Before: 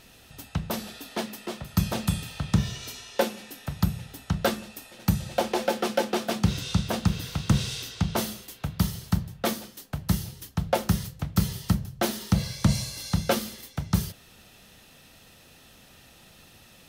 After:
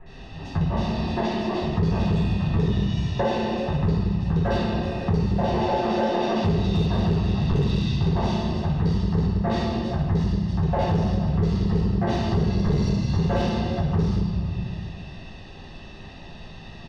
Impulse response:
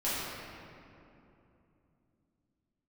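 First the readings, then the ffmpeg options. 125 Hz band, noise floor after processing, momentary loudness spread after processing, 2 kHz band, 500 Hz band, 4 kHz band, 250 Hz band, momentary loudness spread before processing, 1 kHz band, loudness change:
+6.0 dB, -41 dBFS, 16 LU, +0.5 dB, +5.0 dB, -2.0 dB, +6.0 dB, 10 LU, +5.0 dB, +5.0 dB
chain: -filter_complex "[0:a]lowpass=f=4900:w=0.5412,lowpass=f=4900:w=1.3066,aecho=1:1:1.1:0.69,acrossover=split=1900[s0][s1];[s1]adelay=60[s2];[s0][s2]amix=inputs=2:normalize=0[s3];[1:a]atrim=start_sample=2205,asetrate=88200,aresample=44100[s4];[s3][s4]afir=irnorm=-1:irlink=0,acrossover=split=460|1600[s5][s6][s7];[s6]crystalizer=i=5.5:c=0[s8];[s5][s8][s7]amix=inputs=3:normalize=0,lowshelf=f=210:g=5,asplit=2[s9][s10];[s10]aeval=exprs='0.224*(abs(mod(val(0)/0.224+3,4)-2)-1)':c=same,volume=0.501[s11];[s9][s11]amix=inputs=2:normalize=0,equalizer=f=410:t=o:w=0.54:g=13.5,acompressor=threshold=0.0794:ratio=3"

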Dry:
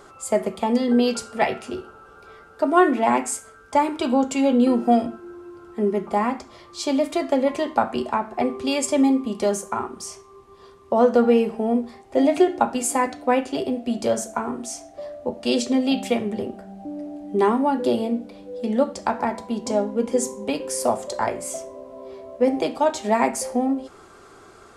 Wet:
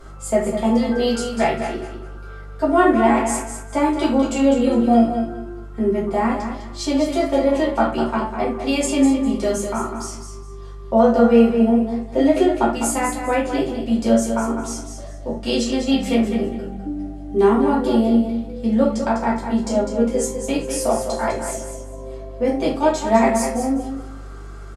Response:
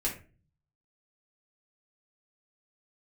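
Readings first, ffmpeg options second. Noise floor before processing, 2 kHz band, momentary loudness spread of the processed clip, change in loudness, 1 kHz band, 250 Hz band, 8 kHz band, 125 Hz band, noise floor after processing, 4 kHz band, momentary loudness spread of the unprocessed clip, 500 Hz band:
-48 dBFS, +3.0 dB, 16 LU, +3.0 dB, +1.5 dB, +4.5 dB, +2.0 dB, +8.0 dB, -35 dBFS, +2.5 dB, 15 LU, +3.0 dB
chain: -filter_complex "[0:a]aeval=exprs='val(0)+0.00447*(sin(2*PI*50*n/s)+sin(2*PI*2*50*n/s)/2+sin(2*PI*3*50*n/s)/3+sin(2*PI*4*50*n/s)/4+sin(2*PI*5*50*n/s)/5)':c=same,aecho=1:1:202|404|606:0.398|0.0955|0.0229[s0];[1:a]atrim=start_sample=2205,atrim=end_sample=3087,asetrate=32634,aresample=44100[s1];[s0][s1]afir=irnorm=-1:irlink=0,volume=0.562"

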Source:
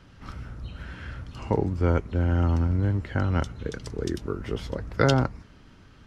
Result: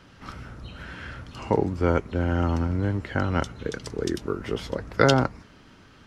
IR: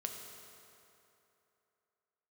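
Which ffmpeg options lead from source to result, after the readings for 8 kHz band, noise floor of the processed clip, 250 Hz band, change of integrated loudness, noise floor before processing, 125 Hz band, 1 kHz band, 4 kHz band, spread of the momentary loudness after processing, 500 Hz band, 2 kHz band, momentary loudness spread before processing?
no reading, -52 dBFS, +1.5 dB, +0.5 dB, -52 dBFS, -2.5 dB, +4.0 dB, +4.0 dB, 19 LU, +3.0 dB, +4.0 dB, 16 LU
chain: -af "lowshelf=f=130:g=-10.5,volume=1.58"

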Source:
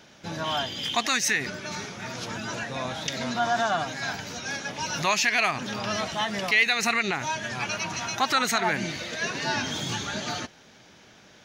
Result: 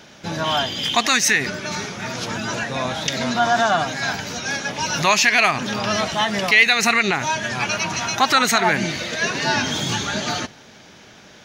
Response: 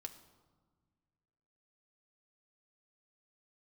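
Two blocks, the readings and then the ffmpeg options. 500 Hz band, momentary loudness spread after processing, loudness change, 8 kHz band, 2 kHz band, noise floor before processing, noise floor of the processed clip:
+7.5 dB, 11 LU, +7.5 dB, +7.5 dB, +7.5 dB, -53 dBFS, -46 dBFS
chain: -filter_complex "[0:a]asplit=2[s0][s1];[1:a]atrim=start_sample=2205,asetrate=39249,aresample=44100[s2];[s1][s2]afir=irnorm=-1:irlink=0,volume=0.282[s3];[s0][s3]amix=inputs=2:normalize=0,volume=2"

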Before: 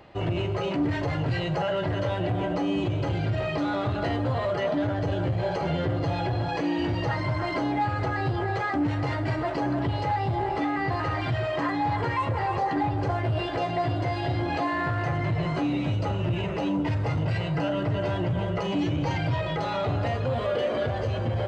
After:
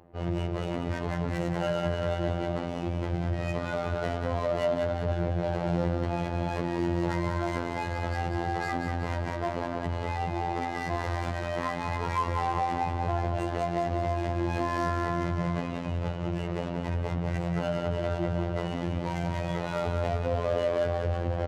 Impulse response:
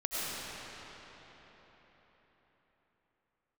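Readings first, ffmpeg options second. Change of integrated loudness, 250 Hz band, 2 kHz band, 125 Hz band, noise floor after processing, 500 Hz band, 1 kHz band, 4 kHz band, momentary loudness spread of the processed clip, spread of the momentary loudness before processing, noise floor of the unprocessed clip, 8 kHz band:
-3.0 dB, -4.0 dB, -4.5 dB, -4.0 dB, -34 dBFS, -1.5 dB, -3.0 dB, -6.0 dB, 4 LU, 1 LU, -29 dBFS, no reading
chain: -af "adynamicsmooth=sensitivity=5.5:basefreq=640,aecho=1:1:189|378|567|756|945|1134:0.501|0.256|0.13|0.0665|0.0339|0.0173,afftfilt=real='hypot(re,im)*cos(PI*b)':imag='0':win_size=2048:overlap=0.75"

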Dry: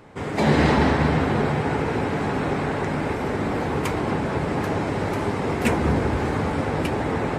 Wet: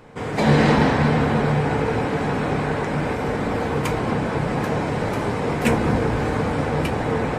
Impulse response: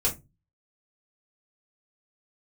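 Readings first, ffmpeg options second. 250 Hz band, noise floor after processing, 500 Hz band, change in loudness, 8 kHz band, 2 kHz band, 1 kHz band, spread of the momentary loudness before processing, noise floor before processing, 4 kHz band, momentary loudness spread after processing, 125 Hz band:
+1.5 dB, -26 dBFS, +2.0 dB, +2.0 dB, +1.5 dB, +1.5 dB, +1.5 dB, 6 LU, -28 dBFS, +1.5 dB, 7 LU, +2.5 dB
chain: -filter_complex "[0:a]asplit=2[s0][s1];[1:a]atrim=start_sample=2205[s2];[s1][s2]afir=irnorm=-1:irlink=0,volume=0.158[s3];[s0][s3]amix=inputs=2:normalize=0"

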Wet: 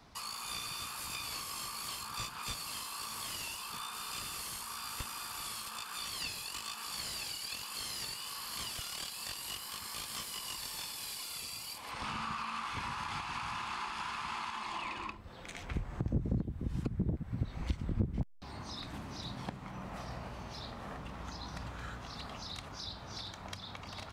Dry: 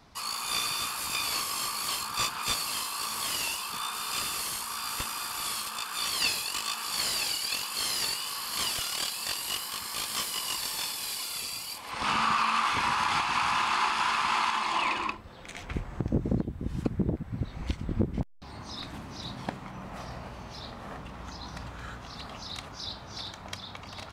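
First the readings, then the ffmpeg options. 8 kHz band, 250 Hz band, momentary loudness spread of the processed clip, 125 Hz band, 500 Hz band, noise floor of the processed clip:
-9.0 dB, -6.0 dB, 8 LU, -3.0 dB, -8.0 dB, -48 dBFS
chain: -filter_complex "[0:a]acrossover=split=180[s0][s1];[s1]acompressor=threshold=0.01:ratio=2.5[s2];[s0][s2]amix=inputs=2:normalize=0,volume=0.794"

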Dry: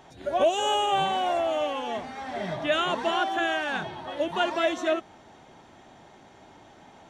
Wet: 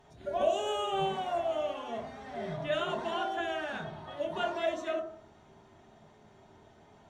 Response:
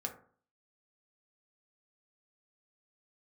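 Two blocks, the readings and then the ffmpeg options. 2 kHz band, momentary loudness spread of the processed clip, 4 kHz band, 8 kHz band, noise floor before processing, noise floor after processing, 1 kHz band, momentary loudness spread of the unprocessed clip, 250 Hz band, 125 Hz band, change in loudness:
-9.5 dB, 10 LU, -9.5 dB, -10.0 dB, -53 dBFS, -59 dBFS, -8.0 dB, 9 LU, -7.5 dB, -2.0 dB, -7.0 dB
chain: -filter_complex "[0:a]lowshelf=f=110:g=10[s0];[1:a]atrim=start_sample=2205,asetrate=37044,aresample=44100[s1];[s0][s1]afir=irnorm=-1:irlink=0,volume=0.355"

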